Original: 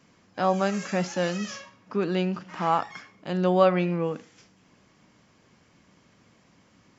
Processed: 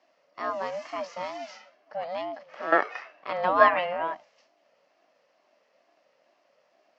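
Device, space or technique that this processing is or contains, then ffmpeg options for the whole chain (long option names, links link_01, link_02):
voice changer toy: -filter_complex "[0:a]asettb=1/sr,asplit=3[link_01][link_02][link_03];[link_01]atrim=end=2.724[link_04];[link_02]atrim=start=2.72:end=4.15,asetpts=PTS-STARTPTS,afade=type=in:duration=0.004:curve=qsin,afade=type=out:start_time=1.426:duration=0.004:curve=qsin,equalizer=frequency=1300:width=0.42:gain=12.5[link_05];[link_03]atrim=start=4.146[link_06];[link_04][link_05]acrossfade=duration=0.004:curve1=hsin:curve2=qsin[link_07];[link_07][link_06]acrossfade=duration=0.004:curve1=qsin:curve2=hsin,aeval=exprs='val(0)*sin(2*PI*420*n/s+420*0.2/2.2*sin(2*PI*2.2*n/s))':channel_layout=same,highpass=580,equalizer=frequency=580:width_type=q:width=4:gain=5,equalizer=frequency=860:width_type=q:width=4:gain=-5,equalizer=frequency=1500:width_type=q:width=4:gain=-8,equalizer=frequency=2400:width_type=q:width=4:gain=-4,equalizer=frequency=3600:width_type=q:width=4:gain=-9,lowpass=frequency=4800:width=0.5412,lowpass=frequency=4800:width=1.3066"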